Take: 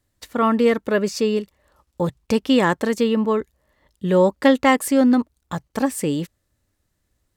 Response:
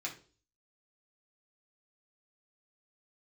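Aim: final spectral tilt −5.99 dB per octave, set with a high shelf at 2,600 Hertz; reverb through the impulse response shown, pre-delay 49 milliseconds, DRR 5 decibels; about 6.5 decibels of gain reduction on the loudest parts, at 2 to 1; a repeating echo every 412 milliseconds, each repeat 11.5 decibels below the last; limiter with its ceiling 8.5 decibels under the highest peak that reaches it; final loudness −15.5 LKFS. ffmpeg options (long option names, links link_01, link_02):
-filter_complex "[0:a]highshelf=frequency=2600:gain=-7,acompressor=threshold=-23dB:ratio=2,alimiter=limit=-19dB:level=0:latency=1,aecho=1:1:412|824|1236:0.266|0.0718|0.0194,asplit=2[link_01][link_02];[1:a]atrim=start_sample=2205,adelay=49[link_03];[link_02][link_03]afir=irnorm=-1:irlink=0,volume=-6.5dB[link_04];[link_01][link_04]amix=inputs=2:normalize=0,volume=13dB"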